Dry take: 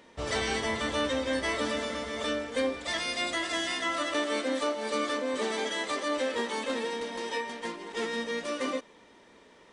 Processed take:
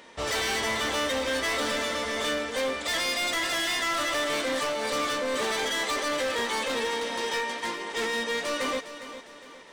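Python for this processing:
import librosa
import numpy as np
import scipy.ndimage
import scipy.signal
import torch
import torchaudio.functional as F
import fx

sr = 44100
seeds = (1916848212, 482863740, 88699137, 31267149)

y = fx.low_shelf(x, sr, hz=420.0, db=-9.5)
y = np.clip(y, -10.0 ** (-33.5 / 20.0), 10.0 ** (-33.5 / 20.0))
y = fx.echo_feedback(y, sr, ms=407, feedback_pct=41, wet_db=-12.5)
y = y * 10.0 ** (8.0 / 20.0)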